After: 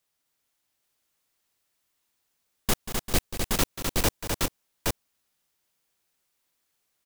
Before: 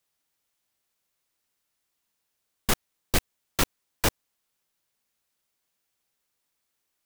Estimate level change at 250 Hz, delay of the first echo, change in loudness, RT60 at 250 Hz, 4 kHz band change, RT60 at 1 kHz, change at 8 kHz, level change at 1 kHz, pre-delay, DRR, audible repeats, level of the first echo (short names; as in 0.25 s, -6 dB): +2.5 dB, 0.187 s, +0.5 dB, none, +1.5 dB, none, +2.5 dB, +0.5 dB, none, none, 4, -12.5 dB